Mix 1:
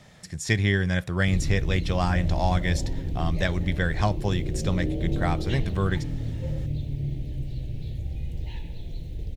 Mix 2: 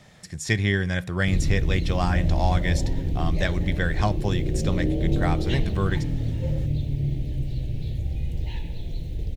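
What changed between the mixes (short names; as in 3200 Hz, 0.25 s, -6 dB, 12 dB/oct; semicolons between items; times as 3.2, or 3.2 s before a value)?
background +4.0 dB; reverb: on, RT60 0.70 s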